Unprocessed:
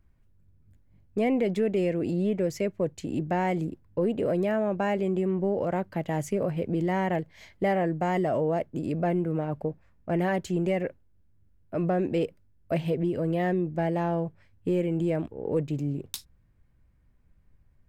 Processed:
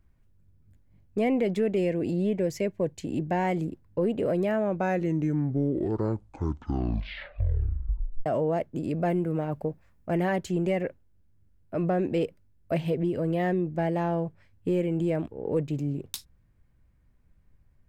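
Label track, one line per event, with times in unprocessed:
1.780000	3.440000	Butterworth band-stop 1300 Hz, Q 5.5
4.590000	4.590000	tape stop 3.67 s
9.000000	10.180000	high shelf 5800 Hz +7.5 dB

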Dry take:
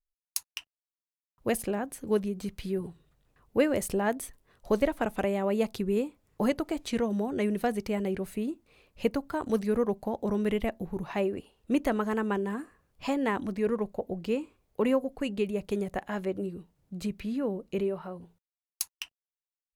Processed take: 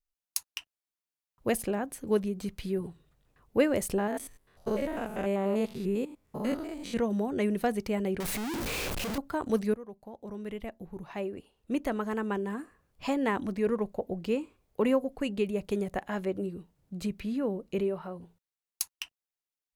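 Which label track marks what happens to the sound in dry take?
3.980000	6.970000	stepped spectrum every 0.1 s
8.200000	9.180000	infinite clipping
9.740000	13.230000	fade in, from -18.5 dB

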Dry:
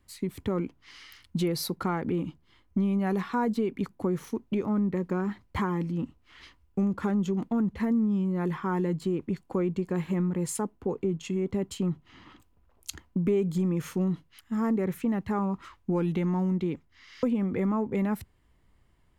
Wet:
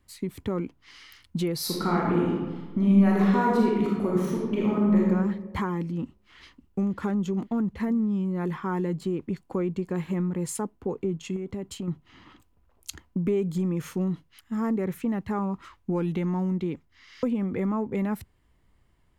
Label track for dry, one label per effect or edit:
1.570000	5.010000	reverb throw, RT60 1.4 s, DRR -4 dB
6.030000	6.910000	echo throw 0.55 s, feedback 55%, level -16.5 dB
11.360000	11.880000	compressor, threshold -29 dBFS

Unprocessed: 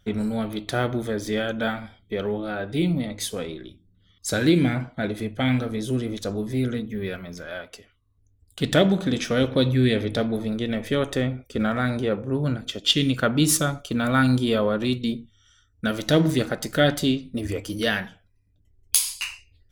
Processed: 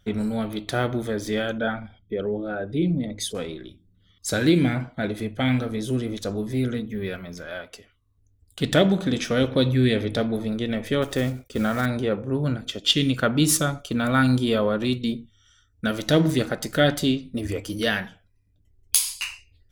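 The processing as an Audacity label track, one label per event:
1.580000	3.350000	formant sharpening exponent 1.5
11.020000	11.870000	block floating point 5-bit

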